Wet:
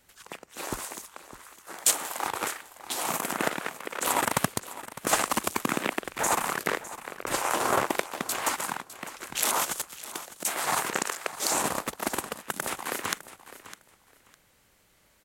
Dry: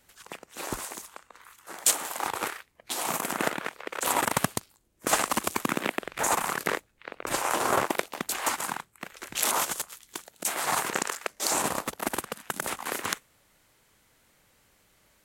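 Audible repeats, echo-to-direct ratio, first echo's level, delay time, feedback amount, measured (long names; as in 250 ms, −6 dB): 2, −15.0 dB, −15.0 dB, 606 ms, 20%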